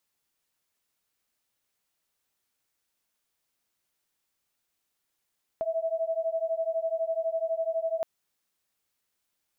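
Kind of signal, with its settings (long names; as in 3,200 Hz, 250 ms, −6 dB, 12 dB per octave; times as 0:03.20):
two tones that beat 648 Hz, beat 12 Hz, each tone −29.5 dBFS 2.42 s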